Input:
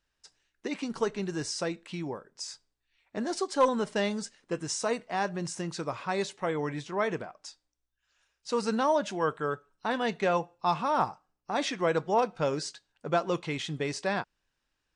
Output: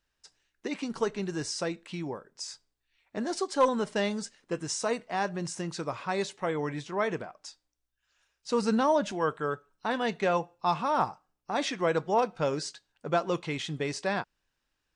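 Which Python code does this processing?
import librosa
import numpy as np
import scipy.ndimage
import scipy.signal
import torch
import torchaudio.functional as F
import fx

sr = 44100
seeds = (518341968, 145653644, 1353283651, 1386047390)

y = fx.low_shelf(x, sr, hz=180.0, db=10.5, at=(8.5, 9.12))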